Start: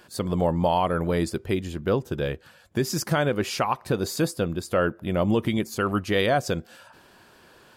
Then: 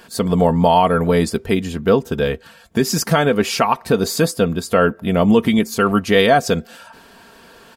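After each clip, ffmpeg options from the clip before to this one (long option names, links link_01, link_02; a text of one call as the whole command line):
ffmpeg -i in.wav -af "aecho=1:1:4.4:0.55,volume=7.5dB" out.wav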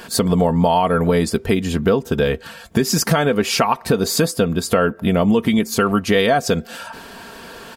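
ffmpeg -i in.wav -af "acompressor=threshold=-24dB:ratio=3,volume=8dB" out.wav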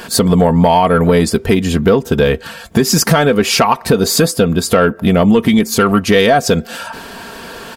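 ffmpeg -i in.wav -af "asoftclip=type=tanh:threshold=-7dB,volume=6.5dB" out.wav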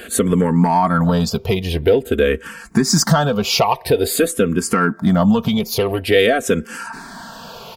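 ffmpeg -i in.wav -filter_complex "[0:a]asplit=2[link_01][link_02];[link_02]afreqshift=-0.48[link_03];[link_01][link_03]amix=inputs=2:normalize=1,volume=-1.5dB" out.wav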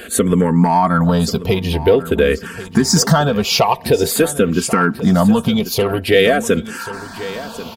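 ffmpeg -i in.wav -af "aecho=1:1:1089|2178|3267:0.178|0.0551|0.0171,volume=1.5dB" out.wav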